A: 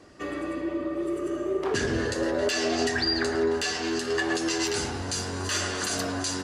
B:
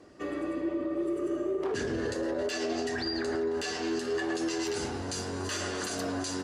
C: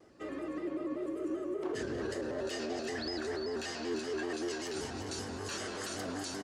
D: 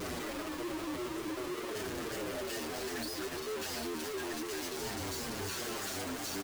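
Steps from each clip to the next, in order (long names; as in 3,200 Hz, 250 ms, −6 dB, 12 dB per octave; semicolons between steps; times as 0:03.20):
parametric band 380 Hz +5.5 dB 2.3 octaves; brickwall limiter −17.5 dBFS, peak gain reduction 7 dB; level −6 dB
repeating echo 350 ms, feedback 45%, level −7 dB; pitch modulation by a square or saw wave square 5.2 Hz, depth 100 cents; level −6 dB
sign of each sample alone; barber-pole flanger 7.4 ms −2.2 Hz; level +2 dB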